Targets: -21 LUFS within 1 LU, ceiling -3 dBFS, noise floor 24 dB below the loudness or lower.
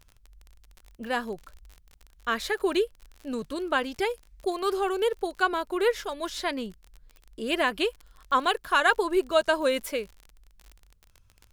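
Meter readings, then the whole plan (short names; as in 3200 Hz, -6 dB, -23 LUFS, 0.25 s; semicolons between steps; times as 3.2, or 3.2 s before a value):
ticks 41/s; loudness -27.5 LUFS; peak -8.5 dBFS; loudness target -21.0 LUFS
-> de-click; gain +6.5 dB; limiter -3 dBFS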